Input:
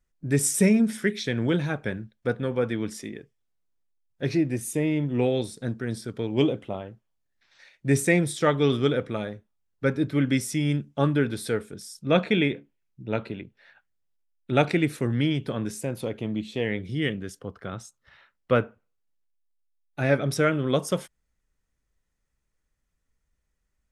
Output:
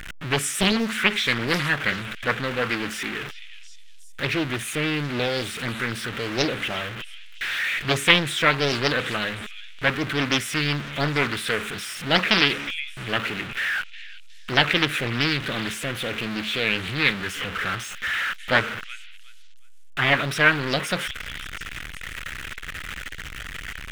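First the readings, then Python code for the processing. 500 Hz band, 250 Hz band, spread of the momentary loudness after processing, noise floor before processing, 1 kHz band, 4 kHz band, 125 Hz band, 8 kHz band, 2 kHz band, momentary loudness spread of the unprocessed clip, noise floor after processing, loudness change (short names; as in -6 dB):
-2.0 dB, -3.5 dB, 15 LU, -77 dBFS, +6.5 dB, +13.0 dB, -2.5 dB, +0.5 dB, +11.0 dB, 15 LU, -38 dBFS, +2.0 dB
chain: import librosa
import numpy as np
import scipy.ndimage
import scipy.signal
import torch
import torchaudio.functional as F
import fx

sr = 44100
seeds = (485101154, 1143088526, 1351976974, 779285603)

p1 = x + 0.5 * 10.0 ** (-28.0 / 20.0) * np.sign(x)
p2 = fx.band_shelf(p1, sr, hz=2100.0, db=14.0, octaves=1.7)
p3 = p2 + fx.echo_stepped(p2, sr, ms=364, hz=3300.0, octaves=0.7, feedback_pct=70, wet_db=-9.5, dry=0)
p4 = fx.doppler_dist(p3, sr, depth_ms=0.89)
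y = F.gain(torch.from_numpy(p4), -4.0).numpy()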